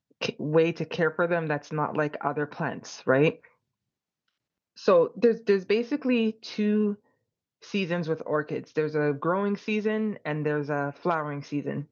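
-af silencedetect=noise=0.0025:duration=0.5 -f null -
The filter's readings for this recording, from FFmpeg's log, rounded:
silence_start: 3.48
silence_end: 4.77 | silence_duration: 1.29
silence_start: 6.96
silence_end: 7.62 | silence_duration: 0.66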